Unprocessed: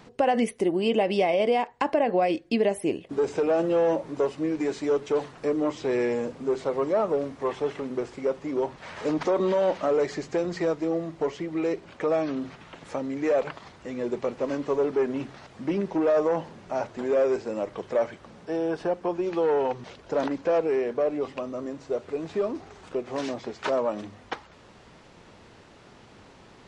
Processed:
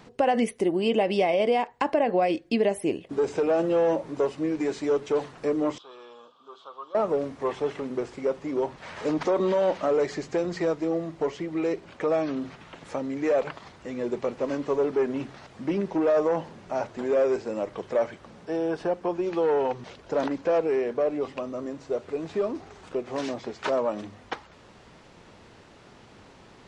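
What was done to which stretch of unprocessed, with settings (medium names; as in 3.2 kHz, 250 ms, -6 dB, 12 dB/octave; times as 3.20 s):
5.78–6.95 s: two resonant band-passes 2 kHz, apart 1.5 oct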